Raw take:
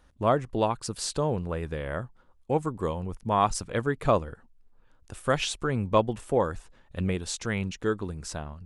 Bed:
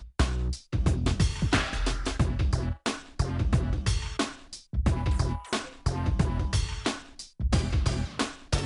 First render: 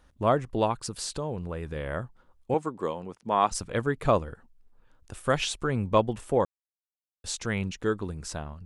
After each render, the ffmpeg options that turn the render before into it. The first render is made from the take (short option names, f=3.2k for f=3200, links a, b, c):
-filter_complex "[0:a]asettb=1/sr,asplit=3[a][b][c];[a]atrim=end=0.864[d];[b]atrim=start=0.86:end=1.76,asetpts=PTS-STARTPTS,afade=t=in:d=0.004:c=qsin,afade=t=out:st=0.896:d=0.004:c=qsin,acompressor=threshold=-31dB:ratio=2:attack=3.2:release=140:knee=1:detection=peak[e];[c]atrim=start=1.756[f];[d][e]acrossfade=d=0.004:c1=hsin:c2=qsin[g];[g][f]acrossfade=d=0.004:c1=qsin:c2=hsin,asettb=1/sr,asplit=3[h][i][j];[h]atrim=end=2.544[k];[i]atrim=start=2.54:end=3.52,asetpts=PTS-STARTPTS,afade=t=in:d=0.004:c=qsin,afade=t=out:st=0.976:d=0.004:c=qsin,highpass=230,lowpass=7.7k[l];[j]atrim=start=3.516[m];[k][l]acrossfade=d=0.004:c1=hsin:c2=qsin[n];[n][m]acrossfade=d=0.004:c1=qsin:c2=hsin,asplit=3[o][p][q];[o]atrim=end=6.45,asetpts=PTS-STARTPTS,afade=t=out:st=6.446:d=0.004:c=hsin[r];[p]atrim=start=6.45:end=7.24,asetpts=PTS-STARTPTS,volume=0[s];[q]atrim=start=7.24,asetpts=PTS-STARTPTS,afade=t=in:d=0.004:c=hsin[t];[r][s][t]concat=n=3:v=0:a=1"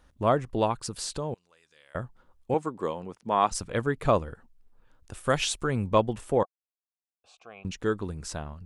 -filter_complex "[0:a]asettb=1/sr,asplit=3[a][b][c];[a]atrim=end=1.344[d];[b]atrim=start=1.34:end=1.95,asetpts=PTS-STARTPTS,afade=t=in:d=0.004:c=qsin,afade=t=out:st=0.606:d=0.004:c=qsin,bandpass=f=5.9k:t=q:w=2.3[e];[c]atrim=start=1.946[f];[d][e]acrossfade=d=0.004:c1=hsin:c2=qsin[g];[g][f]acrossfade=d=0.004:c1=qsin:c2=hsin,asettb=1/sr,asplit=3[h][i][j];[h]atrim=end=5.274[k];[i]atrim=start=5.27:end=5.88,asetpts=PTS-STARTPTS,afade=t=in:d=0.004:c=qsin,afade=t=out:st=0.606:d=0.004:c=qsin,highshelf=f=7.2k:g=7[l];[j]atrim=start=5.876[m];[k][l]acrossfade=d=0.004:c1=hsin:c2=qsin[n];[n][m]acrossfade=d=0.004:c1=qsin:c2=hsin,asettb=1/sr,asplit=3[o][p][q];[o]atrim=end=6.434[r];[p]atrim=start=6.43:end=7.65,asetpts=PTS-STARTPTS,afade=t=in:d=0.004:c=qsin,afade=t=out:st=1.216:d=0.004:c=qsin,asplit=3[s][t][u];[s]bandpass=f=730:t=q:w=8,volume=0dB[v];[t]bandpass=f=1.09k:t=q:w=8,volume=-6dB[w];[u]bandpass=f=2.44k:t=q:w=8,volume=-9dB[x];[v][w][x]amix=inputs=3:normalize=0[y];[q]atrim=start=7.646[z];[r][y]acrossfade=d=0.004:c1=hsin:c2=qsin[aa];[aa][z]acrossfade=d=0.004:c1=qsin:c2=hsin"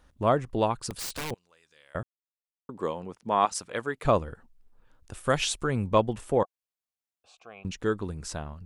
-filter_complex "[0:a]asettb=1/sr,asplit=3[a][b][c];[a]atrim=end=0.904[d];[b]atrim=start=0.9:end=1.31,asetpts=PTS-STARTPTS,afade=t=in:d=0.004:c=qsin,afade=t=out:st=0.406:d=0.004:c=qsin,aeval=exprs='(mod(25.1*val(0)+1,2)-1)/25.1':c=same[e];[c]atrim=start=1.306[f];[d][e]acrossfade=d=0.004:c1=hsin:c2=qsin[g];[g][f]acrossfade=d=0.004:c1=qsin:c2=hsin,asettb=1/sr,asplit=3[h][i][j];[h]atrim=end=3.454[k];[i]atrim=start=3.45:end=4.05,asetpts=PTS-STARTPTS,afade=t=in:d=0.004:c=qsin,afade=t=out:st=0.596:d=0.004:c=qsin,highpass=f=530:p=1[l];[j]atrim=start=4.046[m];[k][l]acrossfade=d=0.004:c1=hsin:c2=qsin[n];[n][m]acrossfade=d=0.004:c1=qsin:c2=hsin,asplit=3[o][p][q];[o]atrim=end=2.03,asetpts=PTS-STARTPTS,afade=t=out:st=2.026:d=0.004:c=hsin[r];[p]atrim=start=2.03:end=2.69,asetpts=PTS-STARTPTS,volume=0[s];[q]atrim=start=2.69,asetpts=PTS-STARTPTS,afade=t=in:d=0.004:c=hsin[t];[r][s][t]concat=n=3:v=0:a=1"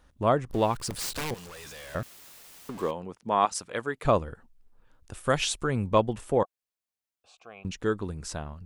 -filter_complex "[0:a]asettb=1/sr,asplit=3[a][b][c];[a]atrim=end=0.504[d];[b]atrim=start=0.5:end=2.91,asetpts=PTS-STARTPTS,afade=t=in:d=0.004:c=qsin,afade=t=out:st=2.406:d=0.004:c=qsin,aeval=exprs='val(0)+0.5*0.0119*sgn(val(0))':c=same[e];[c]atrim=start=2.906[f];[d][e]acrossfade=d=0.004:c1=hsin:c2=qsin[g];[g][f]acrossfade=d=0.004:c1=qsin:c2=hsin"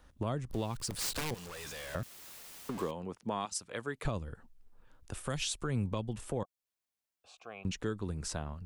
-filter_complex "[0:a]acrossover=split=230|3000[a][b][c];[b]acompressor=threshold=-34dB:ratio=3[d];[a][d][c]amix=inputs=3:normalize=0,alimiter=limit=-23.5dB:level=0:latency=1:release=357"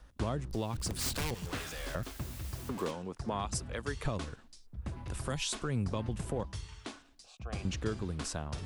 -filter_complex "[1:a]volume=-15dB[a];[0:a][a]amix=inputs=2:normalize=0"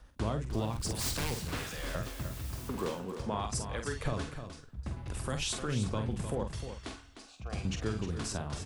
-filter_complex "[0:a]asplit=2[a][b];[b]adelay=47,volume=-7dB[c];[a][c]amix=inputs=2:normalize=0,asplit=2[d][e];[e]aecho=0:1:305:0.335[f];[d][f]amix=inputs=2:normalize=0"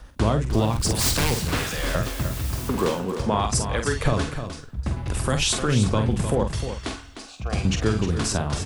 -af "volume=12dB"